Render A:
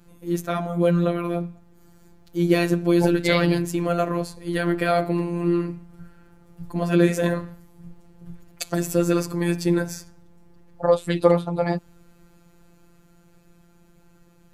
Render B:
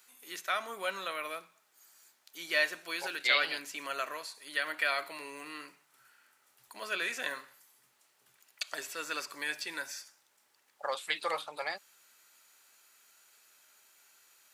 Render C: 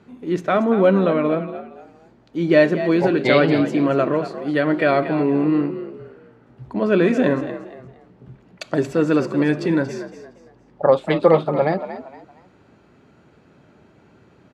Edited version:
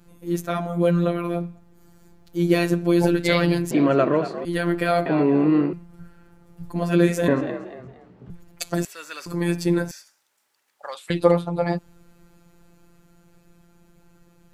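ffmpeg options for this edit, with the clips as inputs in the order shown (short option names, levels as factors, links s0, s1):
-filter_complex "[2:a]asplit=3[s0][s1][s2];[1:a]asplit=2[s3][s4];[0:a]asplit=6[s5][s6][s7][s8][s9][s10];[s5]atrim=end=3.712[s11];[s0]atrim=start=3.708:end=4.452[s12];[s6]atrim=start=4.448:end=5.062[s13];[s1]atrim=start=5.058:end=5.732[s14];[s7]atrim=start=5.728:end=7.282[s15];[s2]atrim=start=7.278:end=8.302[s16];[s8]atrim=start=8.298:end=8.852[s17];[s3]atrim=start=8.848:end=9.262[s18];[s9]atrim=start=9.258:end=9.912[s19];[s4]atrim=start=9.908:end=11.102[s20];[s10]atrim=start=11.098[s21];[s11][s12]acrossfade=d=0.004:c1=hsin:c2=hsin[s22];[s22][s13]acrossfade=d=0.004:c1=hsin:c2=hsin[s23];[s23][s14]acrossfade=d=0.004:c1=hsin:c2=hsin[s24];[s24][s15]acrossfade=d=0.004:c1=hsin:c2=hsin[s25];[s25][s16]acrossfade=d=0.004:c1=hsin:c2=hsin[s26];[s26][s17]acrossfade=d=0.004:c1=hsin:c2=hsin[s27];[s27][s18]acrossfade=d=0.004:c1=hsin:c2=hsin[s28];[s28][s19]acrossfade=d=0.004:c1=hsin:c2=hsin[s29];[s29][s20]acrossfade=d=0.004:c1=hsin:c2=hsin[s30];[s30][s21]acrossfade=d=0.004:c1=hsin:c2=hsin"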